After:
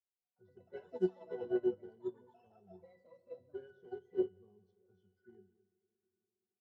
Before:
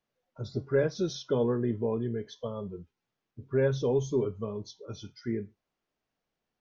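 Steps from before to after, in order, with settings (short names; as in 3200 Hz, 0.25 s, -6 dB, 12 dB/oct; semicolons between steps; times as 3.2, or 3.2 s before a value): HPF 94 Hz 12 dB/oct; tone controls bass -10 dB, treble -1 dB; in parallel at -11.5 dB: wrapped overs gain 27 dB; on the sum: octave resonator F#, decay 0.32 s; on a send: echo 0.209 s -17 dB; on the sum: plate-style reverb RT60 3.9 s, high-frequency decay 0.9×, pre-delay 0 ms, DRR 16.5 dB; echoes that change speed 0.177 s, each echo +5 st, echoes 3, each echo -6 dB; upward expander 2.5:1, over -48 dBFS; gain +9.5 dB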